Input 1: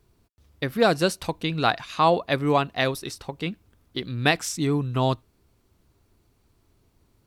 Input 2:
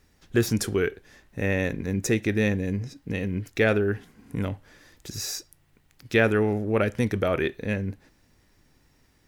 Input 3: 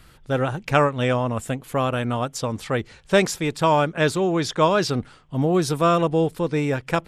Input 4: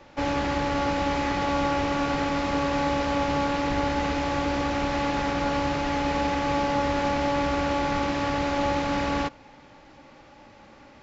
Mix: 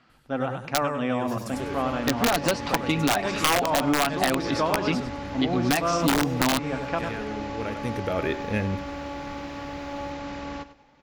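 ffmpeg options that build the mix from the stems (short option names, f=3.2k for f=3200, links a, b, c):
-filter_complex "[0:a]aecho=1:1:7.1:0.52,aeval=exprs='0.596*sin(PI/2*1.58*val(0)/0.596)':c=same,adelay=1450,volume=-3dB[a];[1:a]adelay=850,volume=2.5dB,asplit=2[b][c];[c]volume=-19dB[d];[2:a]volume=-7dB,asplit=3[e][f][g];[f]volume=-5dB[h];[3:a]adelay=1350,volume=-9.5dB,asplit=2[i][j];[j]volume=-14dB[k];[g]apad=whole_len=446425[l];[b][l]sidechaincompress=threshold=-45dB:ratio=5:attack=8.8:release=1110[m];[a][e]amix=inputs=2:normalize=0,highpass=190,equalizer=f=250:t=q:w=4:g=8,equalizer=f=410:t=q:w=4:g=-5,equalizer=f=740:t=q:w=4:g=7,equalizer=f=1.2k:t=q:w=4:g=3,equalizer=f=3.7k:t=q:w=4:g=-6,lowpass=f=5.1k:w=0.5412,lowpass=f=5.1k:w=1.3066,alimiter=limit=-7dB:level=0:latency=1:release=165,volume=0dB[n];[d][h][k]amix=inputs=3:normalize=0,aecho=0:1:99|198|297|396:1|0.26|0.0676|0.0176[o];[m][i][n][o]amix=inputs=4:normalize=0,aeval=exprs='(mod(2.66*val(0)+1,2)-1)/2.66':c=same,acompressor=threshold=-19dB:ratio=6"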